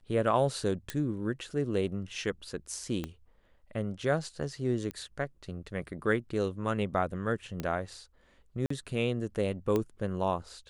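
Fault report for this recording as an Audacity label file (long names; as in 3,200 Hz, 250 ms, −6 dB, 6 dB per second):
0.900000	0.900000	click −17 dBFS
3.040000	3.040000	click −21 dBFS
4.910000	4.910000	click −23 dBFS
7.600000	7.600000	click −20 dBFS
8.660000	8.700000	drop-out 44 ms
9.760000	9.760000	click −17 dBFS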